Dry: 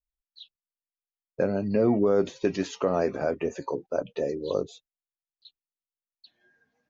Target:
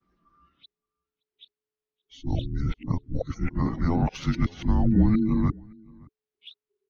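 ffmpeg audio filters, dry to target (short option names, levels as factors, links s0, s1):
-filter_complex "[0:a]areverse,lowshelf=f=110:g=7.5,acrossover=split=360|610[s0][s1][s2];[s1]acompressor=threshold=0.0158:ratio=6[s3];[s0][s3][s2]amix=inputs=3:normalize=0,afreqshift=-430,adynamicsmooth=sensitivity=2.5:basefreq=4600,asplit=2[s4][s5];[s5]adelay=571.4,volume=0.0501,highshelf=f=4000:g=-12.9[s6];[s4][s6]amix=inputs=2:normalize=0,volume=1.58"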